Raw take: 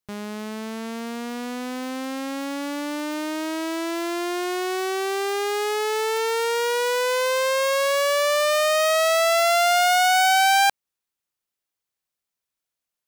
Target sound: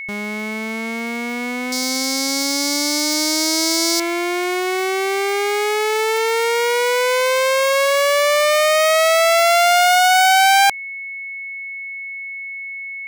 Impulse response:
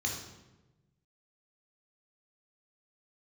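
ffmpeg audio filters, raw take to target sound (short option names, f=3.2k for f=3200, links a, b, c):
-filter_complex "[0:a]asettb=1/sr,asplit=3[a][b][c];[a]atrim=end=1.724[d];[b]atrim=start=1.72:end=4,asetpts=PTS-STARTPTS,afade=t=in:d=0.004:c=qsin,afade=t=out:st=2.276:d=0.004:c=qsin,highshelf=f=3.5k:t=q:w=3:g=12.5[e];[c]atrim=start=3.996[f];[d][e]acrossfade=d=0.004:c1=hsin:c2=qsin[g];[g][f]acrossfade=d=0.004:c1=qsin:c2=hsin,aeval=exprs='val(0)+0.0251*sin(2*PI*2200*n/s)':c=same,volume=5dB"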